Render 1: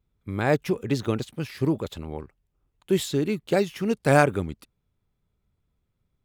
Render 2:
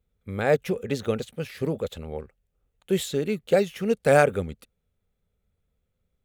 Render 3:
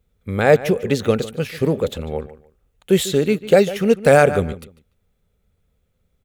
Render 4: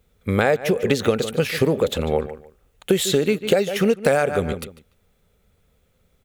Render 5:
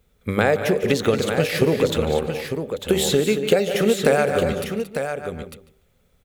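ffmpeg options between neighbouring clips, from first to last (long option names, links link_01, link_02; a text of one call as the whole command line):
ffmpeg -i in.wav -af "equalizer=frequency=125:width_type=o:width=0.33:gain=-9,equalizer=frequency=315:width_type=o:width=0.33:gain=-10,equalizer=frequency=500:width_type=o:width=0.33:gain=8,equalizer=frequency=1000:width_type=o:width=0.33:gain=-8,equalizer=frequency=5000:width_type=o:width=0.33:gain=-5" out.wav
ffmpeg -i in.wav -filter_complex "[0:a]asplit=2[link_01][link_02];[link_02]adelay=147,lowpass=frequency=4500:poles=1,volume=-16dB,asplit=2[link_03][link_04];[link_04]adelay=147,lowpass=frequency=4500:poles=1,volume=0.23[link_05];[link_01][link_03][link_05]amix=inputs=3:normalize=0,alimiter=level_in=9.5dB:limit=-1dB:release=50:level=0:latency=1,volume=-1dB" out.wav
ffmpeg -i in.wav -af "lowshelf=frequency=230:gain=-6.5,acompressor=threshold=-23dB:ratio=12,volume=8.5dB" out.wav
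ffmpeg -i in.wav -filter_complex "[0:a]bandreject=frequency=96.98:width_type=h:width=4,bandreject=frequency=193.96:width_type=h:width=4,bandreject=frequency=290.94:width_type=h:width=4,bandreject=frequency=387.92:width_type=h:width=4,bandreject=frequency=484.9:width_type=h:width=4,bandreject=frequency=581.88:width_type=h:width=4,bandreject=frequency=678.86:width_type=h:width=4,bandreject=frequency=775.84:width_type=h:width=4,bandreject=frequency=872.82:width_type=h:width=4,asplit=2[link_01][link_02];[link_02]aecho=0:1:177|225|232|900:0.158|0.211|0.168|0.422[link_03];[link_01][link_03]amix=inputs=2:normalize=0" out.wav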